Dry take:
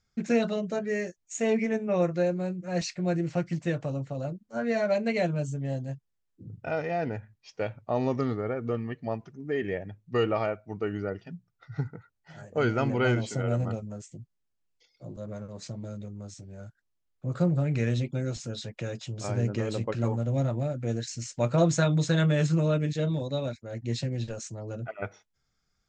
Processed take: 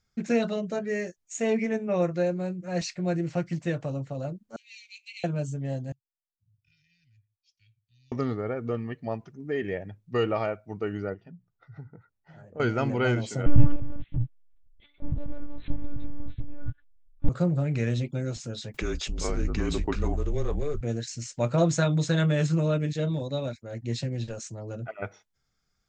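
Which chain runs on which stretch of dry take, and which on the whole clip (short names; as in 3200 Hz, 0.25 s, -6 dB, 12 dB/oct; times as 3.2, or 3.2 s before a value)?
4.56–5.24 steep high-pass 2400 Hz 72 dB/oct + high shelf 5100 Hz -7 dB + core saturation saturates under 710 Hz
5.92–8.12 inverse Chebyshev band-stop 420–1100 Hz, stop band 80 dB + three-band isolator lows -21 dB, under 430 Hz, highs -19 dB, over 2600 Hz
11.14–12.6 LPF 1200 Hz 6 dB/oct + compressor 2:1, threshold -47 dBFS
13.46–17.29 G.711 law mismatch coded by mu + resonant low shelf 190 Hz +11.5 dB, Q 3 + monotone LPC vocoder at 8 kHz 290 Hz
18.74–20.81 frequency shift -150 Hz + fast leveller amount 50%
whole clip: dry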